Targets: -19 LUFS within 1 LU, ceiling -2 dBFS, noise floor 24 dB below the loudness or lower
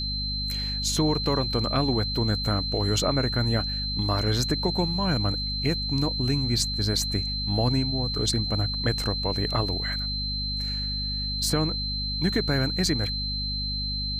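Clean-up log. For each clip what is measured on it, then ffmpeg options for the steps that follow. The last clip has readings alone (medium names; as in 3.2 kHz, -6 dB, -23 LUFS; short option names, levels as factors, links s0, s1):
hum 50 Hz; highest harmonic 250 Hz; hum level -30 dBFS; steady tone 4.1 kHz; tone level -29 dBFS; loudness -25.5 LUFS; peak level -10.5 dBFS; loudness target -19.0 LUFS
-> -af "bandreject=f=50:t=h:w=6,bandreject=f=100:t=h:w=6,bandreject=f=150:t=h:w=6,bandreject=f=200:t=h:w=6,bandreject=f=250:t=h:w=6"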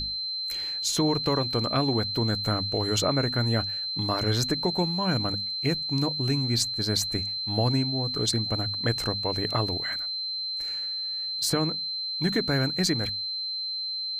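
hum not found; steady tone 4.1 kHz; tone level -29 dBFS
-> -af "bandreject=f=4100:w=30"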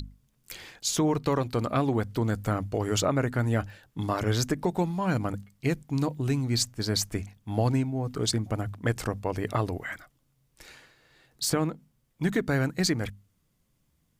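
steady tone not found; loudness -28.5 LUFS; peak level -12.5 dBFS; loudness target -19.0 LUFS
-> -af "volume=2.99"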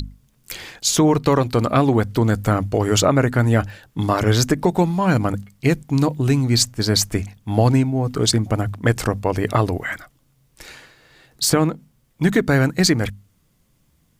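loudness -19.0 LUFS; peak level -3.0 dBFS; noise floor -62 dBFS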